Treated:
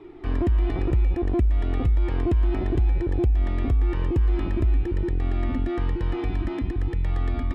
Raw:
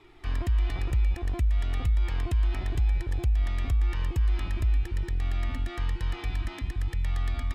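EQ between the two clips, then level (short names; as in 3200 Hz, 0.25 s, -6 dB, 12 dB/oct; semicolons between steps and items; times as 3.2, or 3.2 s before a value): LPF 1900 Hz 6 dB/oct; bell 330 Hz +13 dB 1.9 oct; +2.5 dB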